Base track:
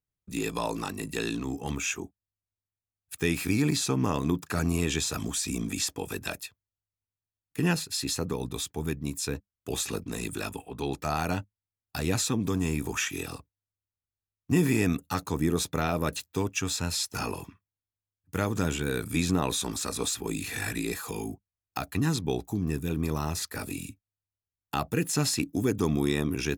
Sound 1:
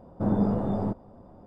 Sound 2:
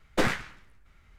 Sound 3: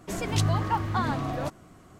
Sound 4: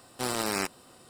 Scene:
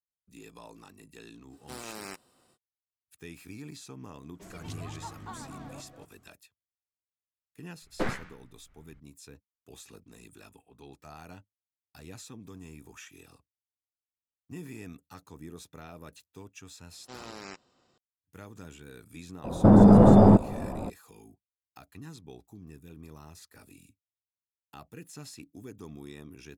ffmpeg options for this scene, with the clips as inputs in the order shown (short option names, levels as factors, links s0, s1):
-filter_complex "[4:a]asplit=2[s0][s1];[0:a]volume=0.119[s2];[3:a]aecho=1:1:238:0.447[s3];[2:a]highshelf=f=2500:g=-11[s4];[s1]aresample=16000,aresample=44100[s5];[1:a]alimiter=level_in=12.6:limit=0.891:release=50:level=0:latency=1[s6];[s0]atrim=end=1.09,asetpts=PTS-STARTPTS,volume=0.251,afade=t=in:d=0.05,afade=t=out:st=1.04:d=0.05,adelay=1490[s7];[s3]atrim=end=1.99,asetpts=PTS-STARTPTS,volume=0.15,afade=t=in:d=0.004:c=hsin,afade=t=out:st=1.986:d=0.004:c=hsin,adelay=4320[s8];[s4]atrim=end=1.18,asetpts=PTS-STARTPTS,volume=0.596,afade=t=in:d=0.004:c=hsin,afade=t=out:st=1.176:d=0.004:c=hsin,adelay=7820[s9];[s5]atrim=end=1.09,asetpts=PTS-STARTPTS,volume=0.211,afade=t=in:d=0.004:c=hsin,afade=t=out:st=1.086:d=0.004:c=hsin,adelay=16890[s10];[s6]atrim=end=1.46,asetpts=PTS-STARTPTS,volume=0.473,afade=t=in:d=0.004:c=hsin,afade=t=out:st=1.456:d=0.004:c=hsin,adelay=19440[s11];[s2][s7][s8][s9][s10][s11]amix=inputs=6:normalize=0"